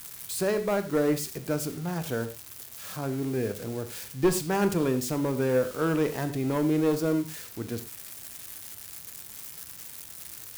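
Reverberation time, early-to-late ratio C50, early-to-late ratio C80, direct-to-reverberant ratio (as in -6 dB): not exponential, 12.0 dB, 15.0 dB, 9.0 dB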